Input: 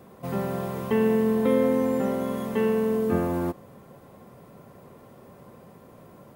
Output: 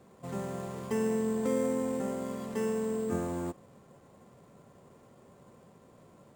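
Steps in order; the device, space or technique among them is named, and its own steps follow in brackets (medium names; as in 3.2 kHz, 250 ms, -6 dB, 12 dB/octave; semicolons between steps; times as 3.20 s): crushed at another speed (playback speed 0.5×; sample-and-hold 11×; playback speed 2×); trim -8 dB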